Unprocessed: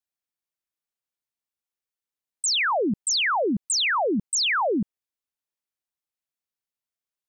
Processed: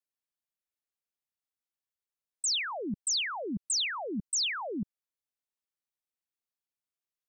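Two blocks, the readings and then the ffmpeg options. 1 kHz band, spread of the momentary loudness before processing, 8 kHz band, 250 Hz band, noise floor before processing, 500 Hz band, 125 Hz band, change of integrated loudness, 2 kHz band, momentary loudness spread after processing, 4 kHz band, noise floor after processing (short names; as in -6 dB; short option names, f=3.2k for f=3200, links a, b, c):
-14.0 dB, 5 LU, -5.5 dB, -9.5 dB, under -85 dBFS, -13.5 dB, -7.0 dB, -8.0 dB, -11.0 dB, 8 LU, -6.0 dB, under -85 dBFS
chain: -filter_complex "[0:a]acrossover=split=210|3000[a][b][c];[b]acompressor=threshold=-35dB:ratio=2.5[d];[a][d][c]amix=inputs=3:normalize=0,volume=-5.5dB"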